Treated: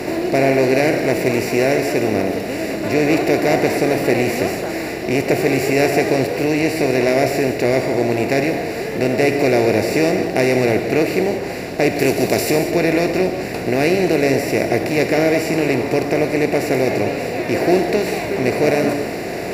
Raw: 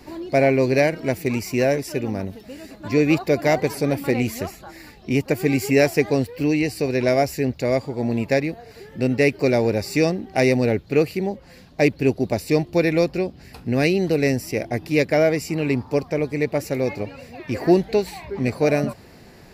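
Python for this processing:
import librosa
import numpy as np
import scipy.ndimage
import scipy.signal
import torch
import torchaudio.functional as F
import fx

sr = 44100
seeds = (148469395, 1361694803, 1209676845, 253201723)

y = fx.bin_compress(x, sr, power=0.4)
y = fx.high_shelf(y, sr, hz=4300.0, db=11.0, at=(11.96, 12.51))
y = fx.rev_gated(y, sr, seeds[0], gate_ms=240, shape='flat', drr_db=5.0)
y = y * librosa.db_to_amplitude(-3.5)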